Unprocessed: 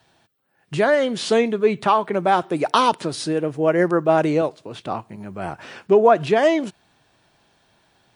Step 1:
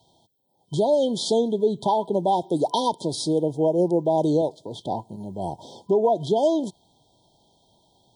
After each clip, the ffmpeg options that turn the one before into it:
ffmpeg -i in.wav -af "afftfilt=real='re*(1-between(b*sr/4096,1000,3100))':imag='im*(1-between(b*sr/4096,1000,3100))':win_size=4096:overlap=0.75,alimiter=limit=-11.5dB:level=0:latency=1:release=235" out.wav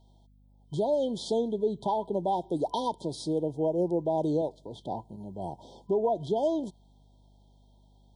ffmpeg -i in.wav -af "highshelf=frequency=2800:gain=-6,aeval=exprs='val(0)+0.00251*(sin(2*PI*50*n/s)+sin(2*PI*2*50*n/s)/2+sin(2*PI*3*50*n/s)/3+sin(2*PI*4*50*n/s)/4+sin(2*PI*5*50*n/s)/5)':channel_layout=same,volume=-6.5dB" out.wav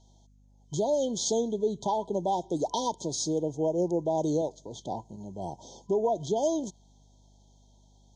ffmpeg -i in.wav -af "lowpass=frequency=6500:width_type=q:width=12" out.wav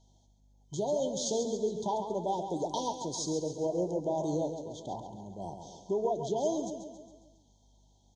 ffmpeg -i in.wav -filter_complex "[0:a]asplit=2[link_01][link_02];[link_02]aecho=0:1:137|274|411|548|685|822:0.398|0.211|0.112|0.0593|0.0314|0.0166[link_03];[link_01][link_03]amix=inputs=2:normalize=0,flanger=delay=6:depth=5.4:regen=-79:speed=1.8:shape=triangular" out.wav

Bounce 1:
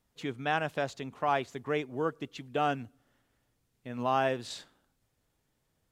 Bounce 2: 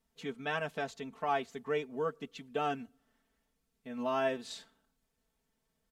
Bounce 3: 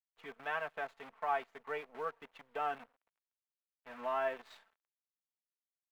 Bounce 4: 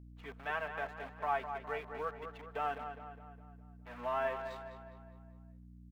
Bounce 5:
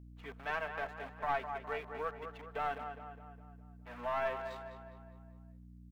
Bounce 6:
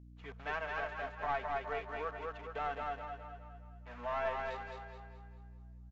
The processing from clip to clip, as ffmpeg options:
ffmpeg -i in.wav -af "aecho=1:1:4.5:0.96,volume=-6.5dB" out.wav
ffmpeg -i in.wav -filter_complex "[0:a]acrusher=bits=8:dc=4:mix=0:aa=0.000001,aeval=exprs='0.119*(cos(1*acos(clip(val(0)/0.119,-1,1)))-cos(1*PI/2))+0.00376*(cos(6*acos(clip(val(0)/0.119,-1,1)))-cos(6*PI/2))':channel_layout=same,acrossover=split=570 2500:gain=0.126 1 0.0794[link_01][link_02][link_03];[link_01][link_02][link_03]amix=inputs=3:normalize=0" out.wav
ffmpeg -i in.wav -filter_complex "[0:a]aeval=exprs='val(0)+0.00251*(sin(2*PI*60*n/s)+sin(2*PI*2*60*n/s)/2+sin(2*PI*3*60*n/s)/3+sin(2*PI*4*60*n/s)/4+sin(2*PI*5*60*n/s)/5)':channel_layout=same,asplit=2[link_01][link_02];[link_02]adelay=205,lowpass=frequency=3400:poles=1,volume=-8dB,asplit=2[link_03][link_04];[link_04]adelay=205,lowpass=frequency=3400:poles=1,volume=0.52,asplit=2[link_05][link_06];[link_06]adelay=205,lowpass=frequency=3400:poles=1,volume=0.52,asplit=2[link_07][link_08];[link_08]adelay=205,lowpass=frequency=3400:poles=1,volume=0.52,asplit=2[link_09][link_10];[link_10]adelay=205,lowpass=frequency=3400:poles=1,volume=0.52,asplit=2[link_11][link_12];[link_12]adelay=205,lowpass=frequency=3400:poles=1,volume=0.52[link_13];[link_03][link_05][link_07][link_09][link_11][link_13]amix=inputs=6:normalize=0[link_14];[link_01][link_14]amix=inputs=2:normalize=0" out.wav
ffmpeg -i in.wav -af "aeval=exprs='(tanh(20*val(0)+0.45)-tanh(0.45))/20':channel_layout=same,volume=2dB" out.wav
ffmpeg -i in.wav -filter_complex "[0:a]asplit=2[link_01][link_02];[link_02]aecho=0:1:215|430|645|860|1075:0.708|0.276|0.108|0.042|0.0164[link_03];[link_01][link_03]amix=inputs=2:normalize=0,aresample=16000,aresample=44100,volume=-1.5dB" out.wav

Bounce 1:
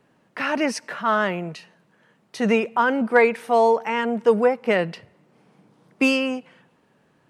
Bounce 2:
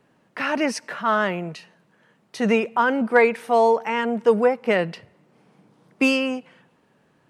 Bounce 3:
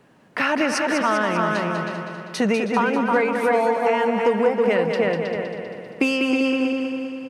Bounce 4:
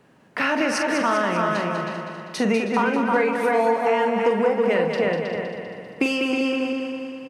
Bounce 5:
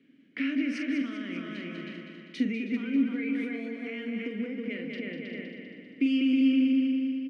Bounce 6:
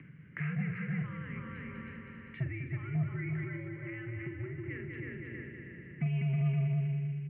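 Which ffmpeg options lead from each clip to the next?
ffmpeg -i in.wav -af anull out.wav
ffmpeg -i in.wav -filter_complex "[0:a]asplit=2[link_01][link_02];[link_02]adelay=318,lowpass=frequency=3000:poles=1,volume=-5dB,asplit=2[link_03][link_04];[link_04]adelay=318,lowpass=frequency=3000:poles=1,volume=0.29,asplit=2[link_05][link_06];[link_06]adelay=318,lowpass=frequency=3000:poles=1,volume=0.29,asplit=2[link_07][link_08];[link_08]adelay=318,lowpass=frequency=3000:poles=1,volume=0.29[link_09];[link_03][link_05][link_07][link_09]amix=inputs=4:normalize=0[link_10];[link_01][link_10]amix=inputs=2:normalize=0,acompressor=threshold=-24dB:ratio=6,asplit=2[link_11][link_12];[link_12]aecho=0:1:197|394|591|788|985|1182|1379:0.447|0.259|0.15|0.0872|0.0505|0.0293|0.017[link_13];[link_11][link_13]amix=inputs=2:normalize=0,volume=6.5dB" out.wav
ffmpeg -i in.wav -filter_complex "[0:a]asplit=2[link_01][link_02];[link_02]adelay=44,volume=-7.5dB[link_03];[link_01][link_03]amix=inputs=2:normalize=0,volume=-1.5dB" out.wav
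ffmpeg -i in.wav -filter_complex "[0:a]alimiter=limit=-15.5dB:level=0:latency=1:release=238,asplit=3[link_01][link_02][link_03];[link_01]bandpass=frequency=270:width_type=q:width=8,volume=0dB[link_04];[link_02]bandpass=frequency=2290:width_type=q:width=8,volume=-6dB[link_05];[link_03]bandpass=frequency=3010:width_type=q:width=8,volume=-9dB[link_06];[link_04][link_05][link_06]amix=inputs=3:normalize=0,volume=5.5dB" out.wav
ffmpeg -i in.wav -af "acompressor=mode=upward:threshold=-35dB:ratio=2.5,aeval=exprs='0.178*(cos(1*acos(clip(val(0)/0.178,-1,1)))-cos(1*PI/2))+0.01*(cos(5*acos(clip(val(0)/0.178,-1,1)))-cos(5*PI/2))':channel_layout=same,highpass=frequency=240:width_type=q:width=0.5412,highpass=frequency=240:width_type=q:width=1.307,lowpass=frequency=2400:width_type=q:width=0.5176,lowpass=frequency=2400:width_type=q:width=0.7071,lowpass=frequency=2400:width_type=q:width=1.932,afreqshift=-120,volume=-5.5dB" out.wav

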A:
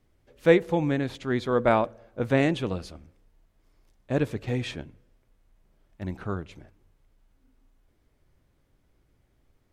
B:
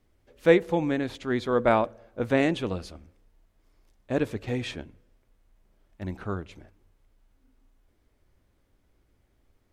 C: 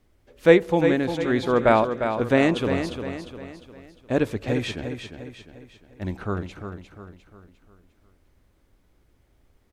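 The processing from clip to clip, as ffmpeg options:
ffmpeg -i in.wav -af "equalizer=frequency=140:width=4.1:gain=-7" out.wav
ffmpeg -i in.wav -af "aecho=1:1:352|704|1056|1408|1760:0.398|0.175|0.0771|0.0339|0.0149,volume=4dB" out.wav

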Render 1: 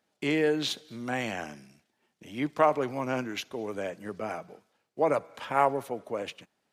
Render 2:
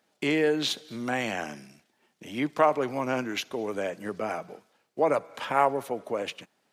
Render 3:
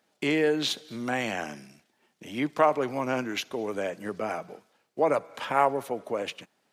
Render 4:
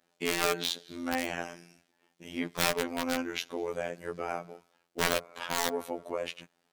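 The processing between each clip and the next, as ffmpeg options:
ffmpeg -i in.wav -filter_complex "[0:a]highpass=frequency=140:poles=1,asplit=2[link_01][link_02];[link_02]acompressor=threshold=-35dB:ratio=6,volume=-1dB[link_03];[link_01][link_03]amix=inputs=2:normalize=0" out.wav
ffmpeg -i in.wav -af anull out.wav
ffmpeg -i in.wav -af "aeval=exprs='(mod(7.5*val(0)+1,2)-1)/7.5':channel_layout=same,afftfilt=real='hypot(re,im)*cos(PI*b)':imag='0':win_size=2048:overlap=0.75" out.wav

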